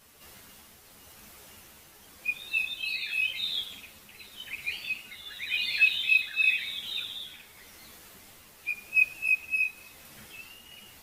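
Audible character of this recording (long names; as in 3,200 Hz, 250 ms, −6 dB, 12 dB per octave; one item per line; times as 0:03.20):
tremolo triangle 0.91 Hz, depth 40%
a shimmering, thickened sound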